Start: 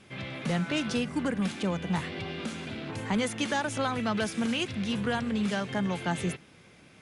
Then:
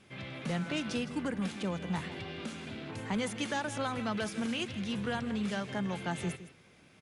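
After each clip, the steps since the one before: echo 0.161 s -14 dB; gain -5 dB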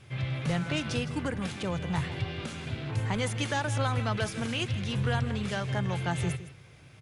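resonant low shelf 160 Hz +7 dB, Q 3; gain +4 dB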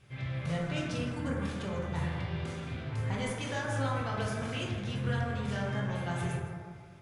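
reverb RT60 1.8 s, pre-delay 7 ms, DRR -3.5 dB; gain -8.5 dB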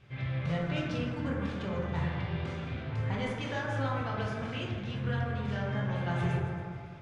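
LPF 4100 Hz 12 dB/oct; echo with dull and thin repeats by turns 0.138 s, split 920 Hz, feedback 54%, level -13 dB; vocal rider within 10 dB 2 s

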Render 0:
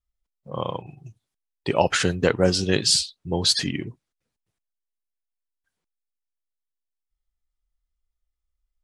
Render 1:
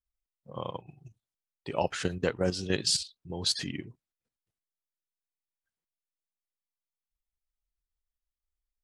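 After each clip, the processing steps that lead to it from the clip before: level quantiser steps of 10 dB; gain -5.5 dB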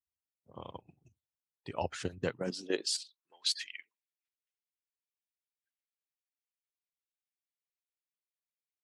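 harmonic-percussive split harmonic -16 dB; high-pass sweep 78 Hz -> 2200 Hz, 2.14–3.47; gain -5 dB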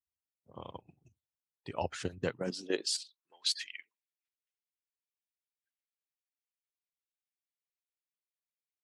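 nothing audible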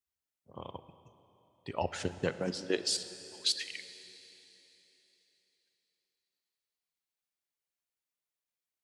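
plate-style reverb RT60 3.6 s, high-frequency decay 1×, DRR 11.5 dB; gain +1.5 dB

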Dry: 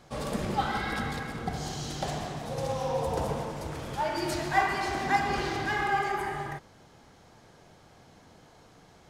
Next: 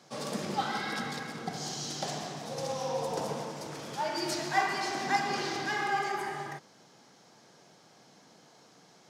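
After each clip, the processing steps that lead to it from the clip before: HPF 150 Hz 24 dB/oct; bell 5500 Hz +8 dB 0.94 oct; gain -3 dB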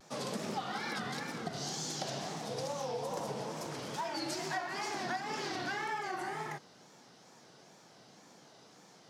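compressor 6:1, threshold -34 dBFS, peak gain reduction 12.5 dB; wow and flutter 140 cents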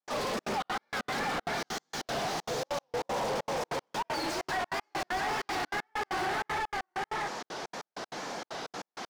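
echo 0.699 s -5.5 dB; step gate ".xxxx.xx.x..x" 194 bpm -60 dB; overdrive pedal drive 34 dB, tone 2000 Hz, clips at -23 dBFS; gain -1 dB

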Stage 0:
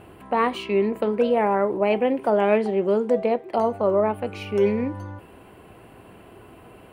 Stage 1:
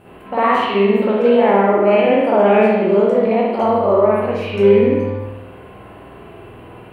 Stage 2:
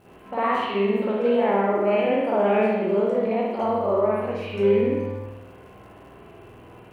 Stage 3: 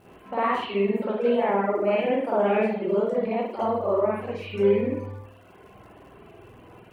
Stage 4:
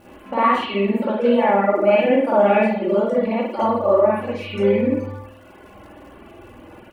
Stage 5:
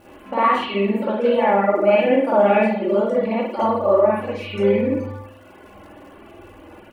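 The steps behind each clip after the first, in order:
spectral trails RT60 0.44 s; spring tank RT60 1.1 s, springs 50 ms, chirp 25 ms, DRR -9.5 dB; gain -3 dB
crackle 230/s -43 dBFS; gain -8 dB
reverb removal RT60 0.85 s
comb 3.5 ms, depth 61%; gain +5.5 dB
notches 60/120/180/240 Hz

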